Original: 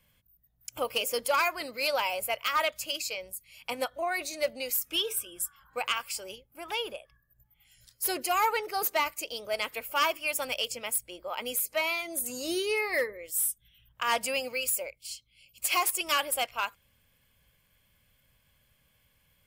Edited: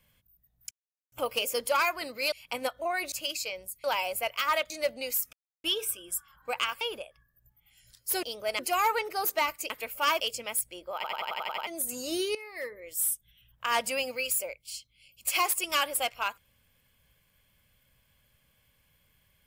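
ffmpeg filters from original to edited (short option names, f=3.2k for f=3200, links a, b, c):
-filter_complex "[0:a]asplit=21[a][b][c][d][e][f][g][h][i][j][k][l][m][n][o][p][q][r][s][t][u];[a]atrim=end=0.71,asetpts=PTS-STARTPTS,afade=t=out:st=0.706:d=0.004:c=hsin,apad=pad_dur=0.41[v];[b]atrim=start=0.71:end=1.912,asetpts=PTS-STARTPTS,afade=t=in:d=0.004:c=hsin[w];[c]atrim=start=3.488:end=4.292[x];[d]atrim=start=2.768:end=3.492[y];[e]atrim=start=1.908:end=2.772[z];[f]atrim=start=4.288:end=4.92,asetpts=PTS-STARTPTS,afade=t=out:st=0.628:d=0.004:c=hsin,apad=pad_dur=0.31[aa];[g]atrim=start=4.92:end=6.092,asetpts=PTS-STARTPTS,afade=t=in:d=0.004:c=hsin[ab];[h]atrim=start=6.748:end=8.172[ac];[i]atrim=start=9.278:end=9.642[ad];[j]atrim=start=8.168:end=9.282[ae];[k]atrim=start=9.638:end=10.142[af];[l]atrim=start=10.568:end=11.412[ag];[m]atrim=start=11.318:end=11.412[ah];[n]atrim=start=11.318:end=11.412[ai];[o]atrim=start=11.318:end=11.412[aj];[p]atrim=start=11.318:end=11.412[ak];[q]atrim=start=11.318:end=11.412[al];[r]atrim=start=11.318:end=11.412[am];[s]atrim=start=11.318:end=11.412[an];[t]atrim=start=12.038:end=12.72,asetpts=PTS-STARTPTS,afade=t=out:st=0.678:d=0.004:c=hsin:silence=0.158489[ao];[u]atrim=start=12.72,asetpts=PTS-STARTPTS,afade=t=in:d=0.57:c=qua:silence=0.158489[ap];[v][w]concat=n=2:v=0:a=1[aq];[aq][x]acrossfade=d=0.004:c1=hsin:c2=hsin[ar];[ar][y]acrossfade=d=0.004:c1=hsin:c2=hsin[as];[as][z]acrossfade=d=0.004:c1=hsin:c2=hsin[at];[aa][ab]concat=n=2:v=0:a=1[au];[at][au]acrossfade=d=0.004:c1=hsin:c2=hsin[av];[av][ac]acrossfade=d=0.004:c1=hsin:c2=hsin[aw];[aw][ad]acrossfade=d=0.004:c1=hsin:c2=hsin[ax];[ax][ae]acrossfade=d=0.004:c1=hsin:c2=hsin[ay];[ay][af]acrossfade=d=0.004:c1=hsin:c2=hsin[az];[az][ag]acrossfade=d=0.004:c1=hsin:c2=hsin[ba];[ba][ah]acrossfade=d=0.004:c1=hsin:c2=hsin[bb];[bb][ai]acrossfade=d=0.004:c1=hsin:c2=hsin[bc];[bc][aj]acrossfade=d=0.004:c1=hsin:c2=hsin[bd];[bd][ak]acrossfade=d=0.004:c1=hsin:c2=hsin[be];[be][al]acrossfade=d=0.004:c1=hsin:c2=hsin[bf];[bf][am]acrossfade=d=0.004:c1=hsin:c2=hsin[bg];[bg][an]acrossfade=d=0.004:c1=hsin:c2=hsin[bh];[ao][ap]concat=n=2:v=0:a=1[bi];[bh][bi]acrossfade=d=0.004:c1=hsin:c2=hsin"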